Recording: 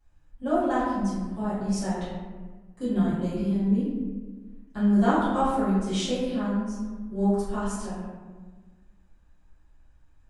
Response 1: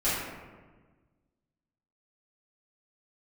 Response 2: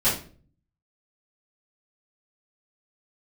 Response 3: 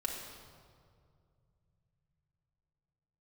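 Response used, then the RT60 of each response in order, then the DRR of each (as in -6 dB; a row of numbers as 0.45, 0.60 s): 1; 1.4, 0.40, 2.3 s; -14.0, -13.0, -1.0 dB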